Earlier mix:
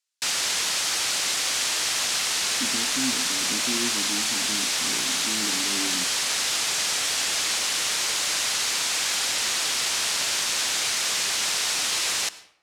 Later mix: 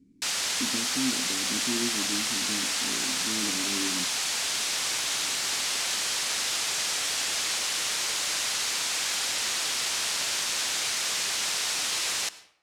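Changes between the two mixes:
speech: entry −2.00 s
background −3.5 dB

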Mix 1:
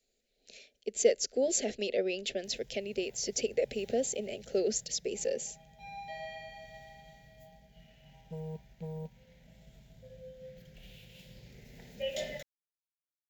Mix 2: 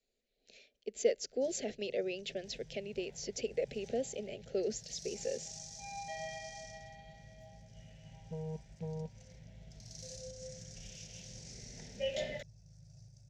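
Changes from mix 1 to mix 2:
speech −4.5 dB
first sound: unmuted
master: add high-frequency loss of the air 70 metres

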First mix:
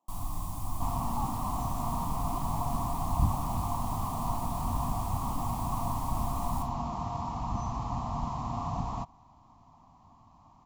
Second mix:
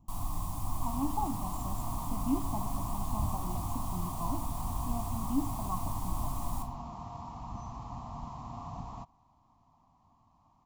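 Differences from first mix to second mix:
speech: remove four-pole ladder high-pass 400 Hz, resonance 25%
second sound −8.5 dB

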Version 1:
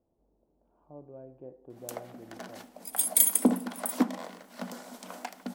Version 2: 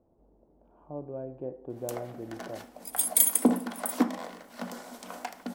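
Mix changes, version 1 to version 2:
speech +9.0 dB
first sound: send +8.0 dB

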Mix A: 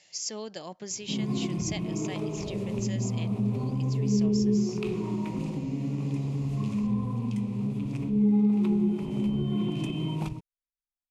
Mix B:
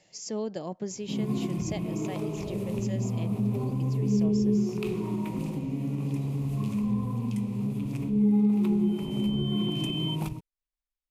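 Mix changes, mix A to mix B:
speech: add tilt shelving filter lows +8.5 dB, about 1,100 Hz
second sound +11.0 dB
master: remove low-pass filter 7,400 Hz 12 dB per octave

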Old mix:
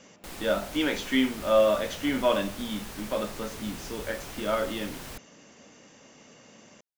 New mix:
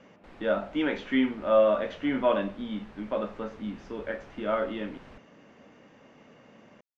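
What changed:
background −8.0 dB
master: add low-pass filter 2,200 Hz 12 dB per octave

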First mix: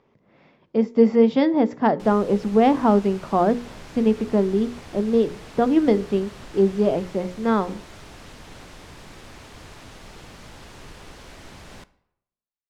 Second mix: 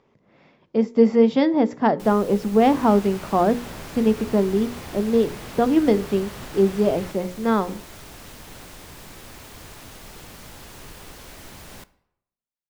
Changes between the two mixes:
second sound +8.5 dB
master: remove high-frequency loss of the air 59 metres

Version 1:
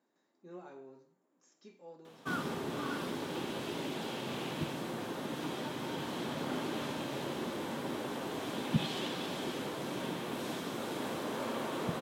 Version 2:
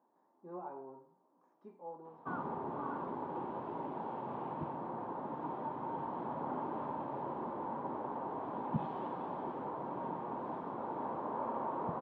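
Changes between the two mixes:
background −6.0 dB
master: add low-pass with resonance 940 Hz, resonance Q 4.3

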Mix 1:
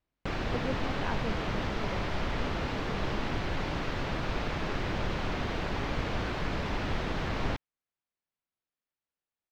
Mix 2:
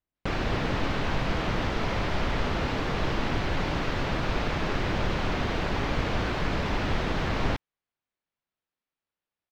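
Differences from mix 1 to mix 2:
speech −7.0 dB
background +4.5 dB

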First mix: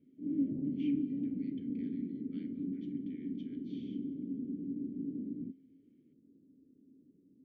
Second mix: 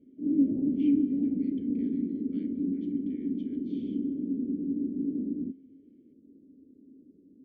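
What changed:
background +9.5 dB
master: add parametric band 140 Hz −12.5 dB 0.58 octaves

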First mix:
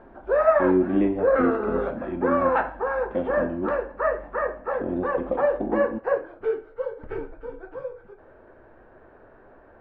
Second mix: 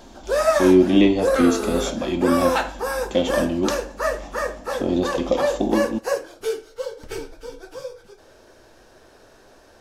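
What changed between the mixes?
speech +6.5 dB
master: remove low-pass filter 1,800 Hz 24 dB per octave

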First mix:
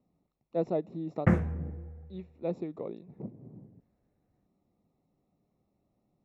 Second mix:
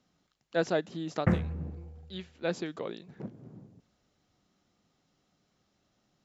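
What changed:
speech: remove moving average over 28 samples
reverb: off

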